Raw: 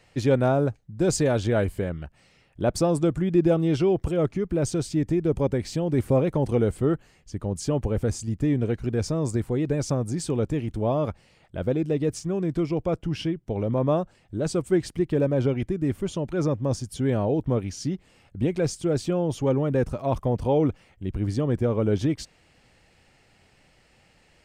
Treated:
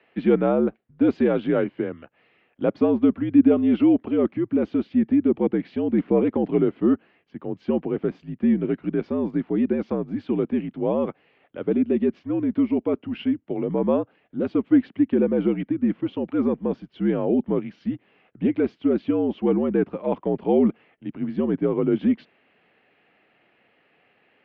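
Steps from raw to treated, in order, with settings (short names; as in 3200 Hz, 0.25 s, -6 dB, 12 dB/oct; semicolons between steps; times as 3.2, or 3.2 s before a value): dynamic EQ 310 Hz, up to +7 dB, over -36 dBFS, Q 1.3; mistuned SSB -66 Hz 260–3200 Hz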